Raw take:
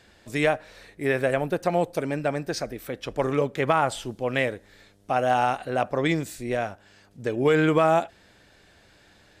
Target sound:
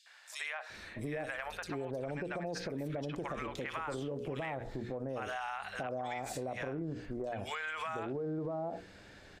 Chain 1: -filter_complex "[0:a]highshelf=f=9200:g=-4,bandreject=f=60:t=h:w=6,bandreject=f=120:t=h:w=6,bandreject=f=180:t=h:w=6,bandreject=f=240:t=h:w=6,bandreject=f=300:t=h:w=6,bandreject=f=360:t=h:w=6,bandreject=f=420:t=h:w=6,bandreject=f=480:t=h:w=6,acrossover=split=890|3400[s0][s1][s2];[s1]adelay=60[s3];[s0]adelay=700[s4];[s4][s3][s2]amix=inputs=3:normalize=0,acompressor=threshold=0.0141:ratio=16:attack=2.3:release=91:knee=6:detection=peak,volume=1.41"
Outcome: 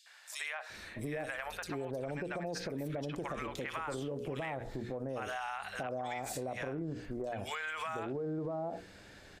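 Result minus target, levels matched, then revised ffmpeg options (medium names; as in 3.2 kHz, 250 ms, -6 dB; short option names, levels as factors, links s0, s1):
8 kHz band +3.0 dB
-filter_complex "[0:a]highshelf=f=9200:g=-13.5,bandreject=f=60:t=h:w=6,bandreject=f=120:t=h:w=6,bandreject=f=180:t=h:w=6,bandreject=f=240:t=h:w=6,bandreject=f=300:t=h:w=6,bandreject=f=360:t=h:w=6,bandreject=f=420:t=h:w=6,bandreject=f=480:t=h:w=6,acrossover=split=890|3400[s0][s1][s2];[s1]adelay=60[s3];[s0]adelay=700[s4];[s4][s3][s2]amix=inputs=3:normalize=0,acompressor=threshold=0.0141:ratio=16:attack=2.3:release=91:knee=6:detection=peak,volume=1.41"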